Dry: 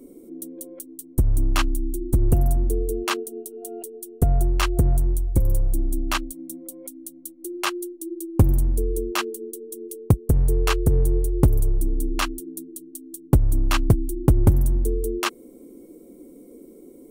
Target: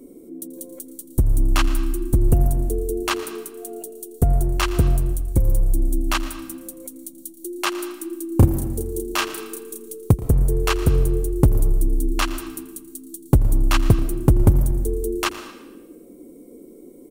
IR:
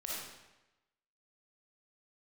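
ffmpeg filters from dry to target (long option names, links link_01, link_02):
-filter_complex "[0:a]asettb=1/sr,asplit=3[link_01][link_02][link_03];[link_01]atrim=end=8.274[link_04];[link_02]atrim=start=8.27:end=9.94,asetpts=PTS-STARTPTS,afade=type=in:duration=0.004:curve=qsin,afade=type=out:start_time=1.666:duration=0.004:curve=qsin,asplit=2[link_05][link_06];[link_06]adelay=33,volume=-3dB[link_07];[link_05][link_07]amix=inputs=2:normalize=0,atrim=end_sample=73647[link_08];[link_03]atrim=start=9.936[link_09];[link_04][link_08]acrossfade=duration=0.004:curve1=hsin:curve2=qsin[link_10];[link_10][link_09]acrossfade=duration=0.004:curve1=qsin:curve2=hsin,asplit=4[link_11][link_12][link_13][link_14];[link_12]adelay=115,afreqshift=-57,volume=-18dB[link_15];[link_13]adelay=230,afreqshift=-114,volume=-28.2dB[link_16];[link_14]adelay=345,afreqshift=-171,volume=-38.3dB[link_17];[link_11][link_15][link_16][link_17]amix=inputs=4:normalize=0,asplit=2[link_18][link_19];[1:a]atrim=start_sample=2205,adelay=84[link_20];[link_19][link_20]afir=irnorm=-1:irlink=0,volume=-14.5dB[link_21];[link_18][link_21]amix=inputs=2:normalize=0,volume=1.5dB"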